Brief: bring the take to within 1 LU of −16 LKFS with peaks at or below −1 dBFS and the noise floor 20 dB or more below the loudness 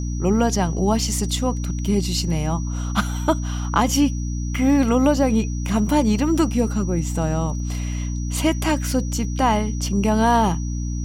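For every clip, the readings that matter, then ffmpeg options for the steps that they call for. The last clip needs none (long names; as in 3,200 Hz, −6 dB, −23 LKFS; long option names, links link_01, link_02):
mains hum 60 Hz; hum harmonics up to 300 Hz; level of the hum −23 dBFS; interfering tone 5,800 Hz; level of the tone −39 dBFS; integrated loudness −21.0 LKFS; sample peak −4.5 dBFS; target loudness −16.0 LKFS
→ -af "bandreject=frequency=60:width_type=h:width=4,bandreject=frequency=120:width_type=h:width=4,bandreject=frequency=180:width_type=h:width=4,bandreject=frequency=240:width_type=h:width=4,bandreject=frequency=300:width_type=h:width=4"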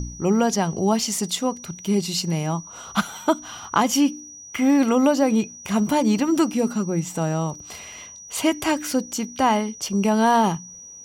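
mains hum none found; interfering tone 5,800 Hz; level of the tone −39 dBFS
→ -af "bandreject=frequency=5800:width=30"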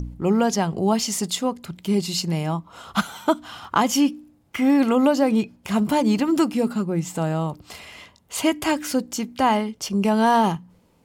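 interfering tone none found; integrated loudness −22.0 LKFS; sample peak −5.5 dBFS; target loudness −16.0 LKFS
→ -af "volume=6dB,alimiter=limit=-1dB:level=0:latency=1"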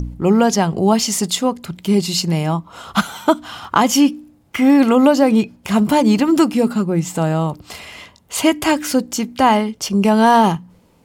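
integrated loudness −16.5 LKFS; sample peak −1.0 dBFS; background noise floor −53 dBFS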